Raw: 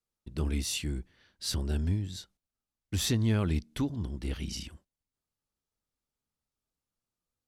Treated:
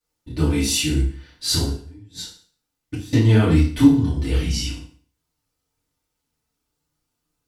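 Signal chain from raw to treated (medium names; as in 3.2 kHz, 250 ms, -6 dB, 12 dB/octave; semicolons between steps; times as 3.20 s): chorus voices 2, 0.51 Hz, delay 29 ms, depth 4.9 ms; 1.68–3.13 s: inverted gate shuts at -31 dBFS, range -26 dB; FDN reverb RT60 0.47 s, low-frequency decay 1×, high-frequency decay 0.95×, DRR -8.5 dB; trim +6.5 dB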